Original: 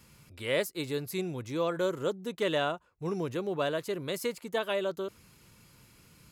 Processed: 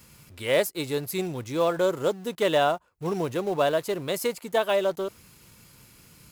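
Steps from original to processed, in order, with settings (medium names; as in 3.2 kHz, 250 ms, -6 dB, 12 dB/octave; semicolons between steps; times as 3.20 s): treble shelf 7.1 kHz +5.5 dB; in parallel at -6.5 dB: companded quantiser 4-bit; on the sum: dynamic bell 740 Hz, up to +7 dB, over -42 dBFS, Q 1.6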